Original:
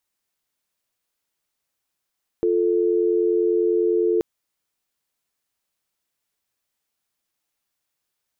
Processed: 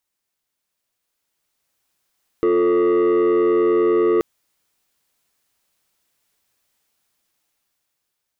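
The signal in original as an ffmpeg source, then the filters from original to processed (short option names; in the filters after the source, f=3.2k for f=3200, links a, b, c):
-f lavfi -i "aevalsrc='0.106*(sin(2*PI*350*t)+sin(2*PI*440*t))':d=1.78:s=44100"
-af "dynaudnorm=f=610:g=5:m=9.5dB,asoftclip=type=tanh:threshold=-13.5dB"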